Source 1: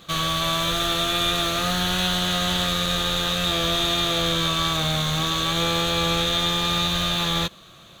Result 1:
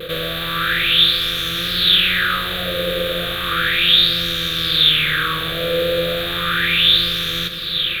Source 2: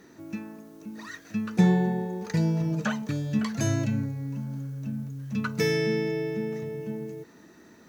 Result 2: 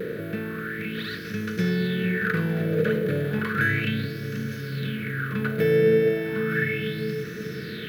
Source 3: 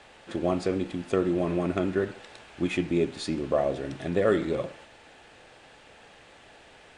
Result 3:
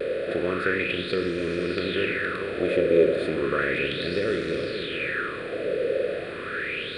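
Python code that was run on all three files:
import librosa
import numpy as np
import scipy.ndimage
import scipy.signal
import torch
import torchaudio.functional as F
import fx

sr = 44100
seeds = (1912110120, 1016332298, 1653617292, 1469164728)

p1 = fx.bin_compress(x, sr, power=0.4)
p2 = fx.curve_eq(p1, sr, hz=(130.0, 250.0, 480.0, 820.0, 1500.0, 3800.0, 6300.0, 12000.0), db=(0, -4, 1, -26, 3, -1, -22, 5))
p3 = 10.0 ** (-14.0 / 20.0) * np.tanh(p2 / 10.0 ** (-14.0 / 20.0))
p4 = p2 + F.gain(torch.from_numpy(p3), -6.0).numpy()
p5 = fx.vibrato(p4, sr, rate_hz=0.54, depth_cents=22.0)
p6 = p5 + fx.echo_alternate(p5, sr, ms=454, hz=870.0, feedback_pct=70, wet_db=-8.0, dry=0)
p7 = fx.bell_lfo(p6, sr, hz=0.34, low_hz=510.0, high_hz=6000.0, db=17)
y = F.gain(torch.from_numpy(p7), -8.0).numpy()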